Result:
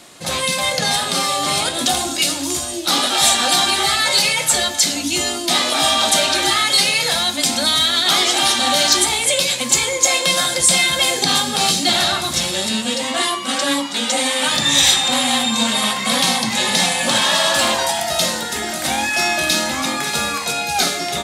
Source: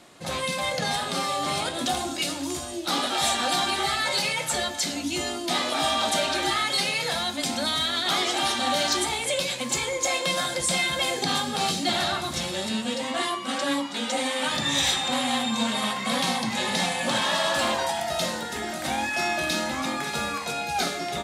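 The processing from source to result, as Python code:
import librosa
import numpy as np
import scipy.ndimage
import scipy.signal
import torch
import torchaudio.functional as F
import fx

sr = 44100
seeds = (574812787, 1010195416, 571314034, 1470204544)

y = fx.high_shelf(x, sr, hz=3100.0, db=8.5)
y = y * librosa.db_to_amplitude(5.5)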